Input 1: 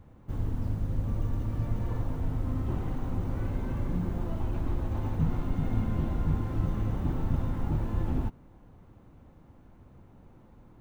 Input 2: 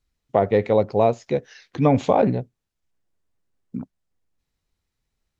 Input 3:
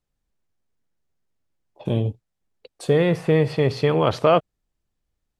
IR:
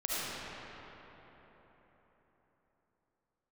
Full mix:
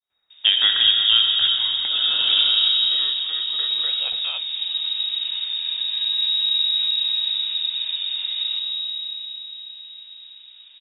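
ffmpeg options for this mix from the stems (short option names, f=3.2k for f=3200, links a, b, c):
-filter_complex "[0:a]highshelf=f=2.6k:g=-11.5,adelay=300,volume=1.5dB,asplit=2[a][b];[b]volume=-12dB[c];[1:a]adelay=100,volume=-4.5dB,asplit=3[d][e][f];[e]volume=-6dB[g];[f]volume=-9.5dB[h];[2:a]flanger=delay=3.3:depth=8.1:regen=82:speed=0.83:shape=sinusoidal,volume=-7dB,asplit=2[i][j];[j]apad=whole_len=242231[k];[d][k]sidechaincompress=threshold=-47dB:ratio=8:attack=16:release=639[l];[a][i]amix=inputs=2:normalize=0,acompressor=threshold=-28dB:ratio=6,volume=0dB[m];[3:a]atrim=start_sample=2205[n];[c][g]amix=inputs=2:normalize=0[o];[o][n]afir=irnorm=-1:irlink=0[p];[h]aecho=0:1:359:1[q];[l][m][p][q]amix=inputs=4:normalize=0,adynamicequalizer=threshold=0.01:dfrequency=1500:dqfactor=0.79:tfrequency=1500:tqfactor=0.79:attack=5:release=100:ratio=0.375:range=2.5:mode=cutabove:tftype=bell,crystalizer=i=9:c=0,lowpass=f=3.2k:t=q:w=0.5098,lowpass=f=3.2k:t=q:w=0.6013,lowpass=f=3.2k:t=q:w=0.9,lowpass=f=3.2k:t=q:w=2.563,afreqshift=-3800"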